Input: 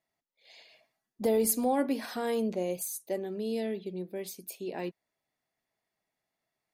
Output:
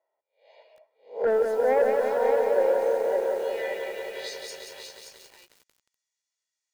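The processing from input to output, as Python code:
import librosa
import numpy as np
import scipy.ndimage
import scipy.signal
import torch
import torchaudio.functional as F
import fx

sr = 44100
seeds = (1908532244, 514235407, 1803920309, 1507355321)

p1 = fx.spec_swells(x, sr, rise_s=0.32)
p2 = scipy.signal.sosfilt(scipy.signal.butter(2, 370.0, 'highpass', fs=sr, output='sos'), p1)
p3 = p2 + 0.7 * np.pad(p2, (int(2.1 * sr / 1000.0), 0))[:len(p2)]
p4 = fx.filter_sweep_bandpass(p3, sr, from_hz=660.0, to_hz=6800.0, start_s=2.87, end_s=4.67, q=2.9)
p5 = fx.fold_sine(p4, sr, drive_db=5, ceiling_db=-21.5)
p6 = fx.air_absorb(p5, sr, metres=61.0)
p7 = p6 + fx.echo_single(p6, sr, ms=574, db=-6.0, dry=0)
p8 = fx.echo_crushed(p7, sr, ms=179, feedback_pct=80, bits=9, wet_db=-4)
y = p8 * 10.0 ** (3.0 / 20.0)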